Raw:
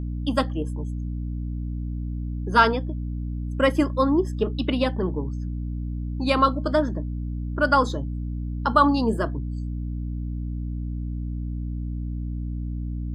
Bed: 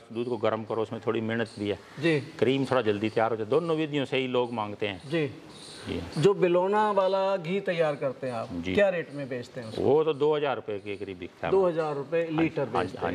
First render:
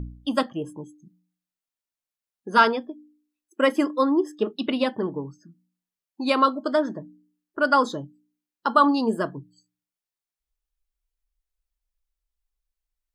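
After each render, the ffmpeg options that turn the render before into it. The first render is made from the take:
-af "bandreject=f=60:t=h:w=4,bandreject=f=120:t=h:w=4,bandreject=f=180:t=h:w=4,bandreject=f=240:t=h:w=4,bandreject=f=300:t=h:w=4"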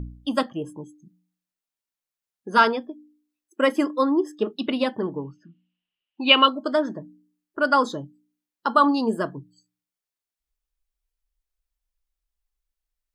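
-filter_complex "[0:a]asettb=1/sr,asplit=3[a][b][c];[a]atrim=end=5.184[d];[b]atrim=start=5.18:end=6.48,asetpts=PTS-STARTPTS,afade=t=in:d=0.004:c=qsin,afade=t=out:st=1.296:d=0.004:c=qsin,lowpass=f=2.9k:t=q:w=12[e];[c]atrim=start=6.476[f];[d][e]acrossfade=d=0.004:c1=hsin:c2=qsin[g];[g][f]acrossfade=d=0.004:c1=qsin:c2=hsin"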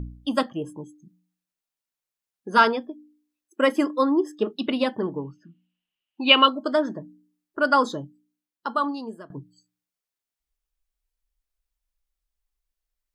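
-filter_complex "[0:a]asplit=2[a][b];[a]atrim=end=9.3,asetpts=PTS-STARTPTS,afade=t=out:st=8.02:d=1.28:silence=0.0944061[c];[b]atrim=start=9.3,asetpts=PTS-STARTPTS,afade=t=in:d=0.004:c=hsin:silence=0.0944061[d];[c][d]concat=n=2:v=0:a=1"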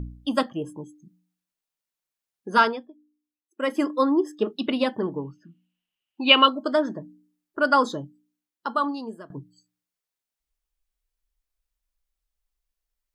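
-filter_complex "[0:a]asplit=3[a][b][c];[a]atrim=end=2.88,asetpts=PTS-STARTPTS,afade=t=out:st=2.53:d=0.35:silence=0.266073[d];[b]atrim=start=2.88:end=3.54,asetpts=PTS-STARTPTS,volume=-11.5dB[e];[c]atrim=start=3.54,asetpts=PTS-STARTPTS,afade=t=in:d=0.35:silence=0.266073[f];[d][e][f]concat=n=3:v=0:a=1"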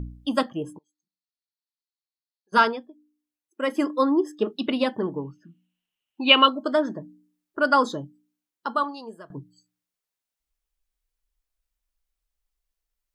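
-filter_complex "[0:a]asplit=3[a][b][c];[a]afade=t=out:st=0.77:d=0.02[d];[b]bandpass=f=4.3k:t=q:w=5.9,afade=t=in:st=0.77:d=0.02,afade=t=out:st=2.52:d=0.02[e];[c]afade=t=in:st=2.52:d=0.02[f];[d][e][f]amix=inputs=3:normalize=0,asettb=1/sr,asplit=3[g][h][i];[g]atrim=end=4.964[j];[h]atrim=start=4.96:end=6.79,asetpts=PTS-STARTPTS,afade=t=in:d=0.004:c=qsin,afade=t=out:st=1.826:d=0.004:c=qsin,bandreject=f=4.8k:w=14[k];[i]atrim=start=6.786[l];[j][k]acrossfade=d=0.004:c1=hsin:c2=qsin[m];[m][l]acrossfade=d=0.004:c1=qsin:c2=hsin,asettb=1/sr,asplit=3[n][o][p];[n]atrim=end=8.834[q];[o]atrim=start=8.83:end=9.31,asetpts=PTS-STARTPTS,afade=t=in:d=0.004:c=qsin,afade=t=out:st=0.476:d=0.004:c=qsin,equalizer=f=260:t=o:w=0.77:g=-9[r];[p]atrim=start=9.306[s];[q][r]acrossfade=d=0.004:c1=hsin:c2=qsin[t];[t][s]acrossfade=d=0.004:c1=qsin:c2=hsin"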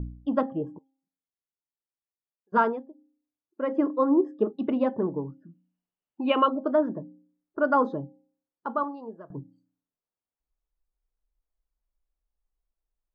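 -af "lowpass=1k,bandreject=f=267.6:t=h:w=4,bandreject=f=535.2:t=h:w=4,bandreject=f=802.8:t=h:w=4"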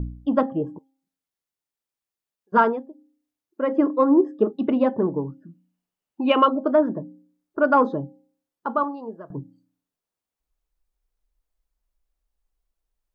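-af "acontrast=26"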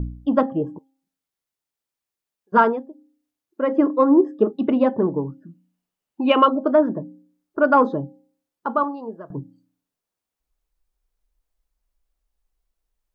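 -af "volume=2dB"

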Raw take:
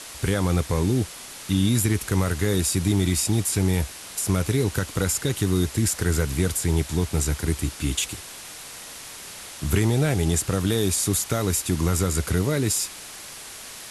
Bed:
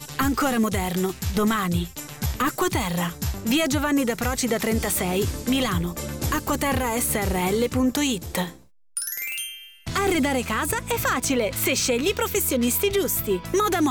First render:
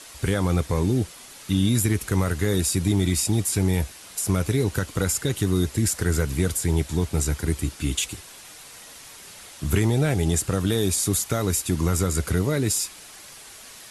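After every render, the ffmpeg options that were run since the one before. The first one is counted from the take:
-af "afftdn=nr=6:nf=-40"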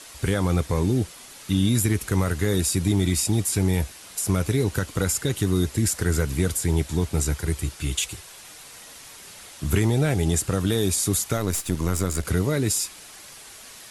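-filter_complex "[0:a]asettb=1/sr,asplit=3[a][b][c];[a]atrim=end=7.334[d];[b]atrim=start=7.33:end=8.4,asetpts=PTS-STARTPTS,afade=t=in:d=0.004:c=qsin,afade=t=out:st=1.066:d=0.004:c=qsin,equalizer=f=250:t=o:w=0.36:g=-14.5[e];[c]atrim=start=8.396[f];[d][e]acrossfade=d=0.004:c1=hsin:c2=qsin[g];[g][f]acrossfade=d=0.004:c1=qsin:c2=hsin,asettb=1/sr,asplit=3[h][i][j];[h]atrim=end=11.374[k];[i]atrim=start=11.37:end=12.25,asetpts=PTS-STARTPTS,afade=t=in:d=0.004:c=qsin,afade=t=out:st=0.876:d=0.004:c=qsin,aeval=exprs='if(lt(val(0),0),0.447*val(0),val(0))':c=same[l];[j]atrim=start=12.246[m];[k][l]acrossfade=d=0.004:c1=hsin:c2=qsin[n];[n][m]acrossfade=d=0.004:c1=qsin:c2=hsin"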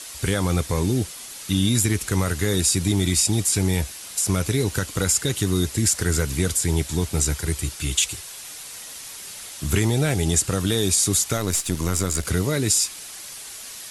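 -filter_complex "[0:a]acrossover=split=9800[a][b];[b]acompressor=threshold=-46dB:ratio=4:attack=1:release=60[c];[a][c]amix=inputs=2:normalize=0,highshelf=f=2.9k:g=8.5"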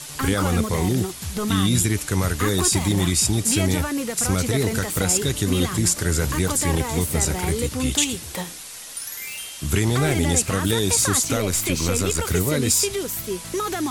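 -filter_complex "[1:a]volume=-4.5dB[a];[0:a][a]amix=inputs=2:normalize=0"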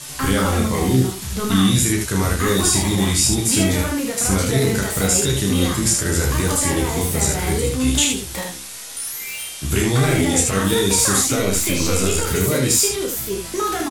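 -filter_complex "[0:a]asplit=2[a][b];[b]adelay=15,volume=-6dB[c];[a][c]amix=inputs=2:normalize=0,aecho=1:1:31|77:0.596|0.631"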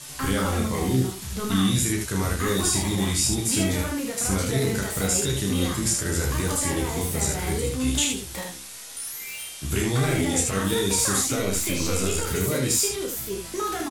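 -af "volume=-6dB"

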